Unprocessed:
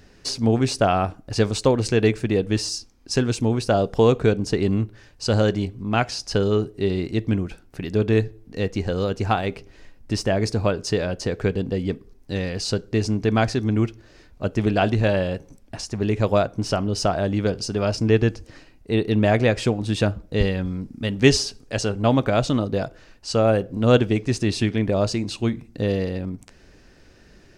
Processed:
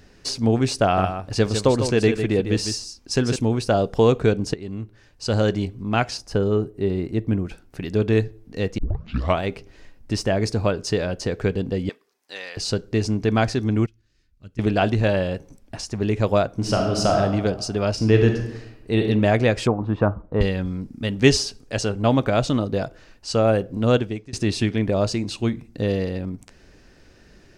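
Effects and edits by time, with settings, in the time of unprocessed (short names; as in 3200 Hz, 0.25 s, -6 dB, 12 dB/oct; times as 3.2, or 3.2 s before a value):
0.82–3.36 echo 0.152 s -8 dB
4.54–5.52 fade in, from -17 dB
6.17–7.45 bell 4500 Hz -10 dB 2.3 oct
8.78 tape start 0.64 s
11.89–12.57 HPF 900 Hz
13.86–14.59 passive tone stack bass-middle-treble 6-0-2
16.53–17.17 reverb throw, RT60 1.4 s, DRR 1 dB
17.94–19.07 reverb throw, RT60 0.86 s, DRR 3 dB
19.67–20.41 synth low-pass 1100 Hz, resonance Q 3
23.79–24.33 fade out, to -23.5 dB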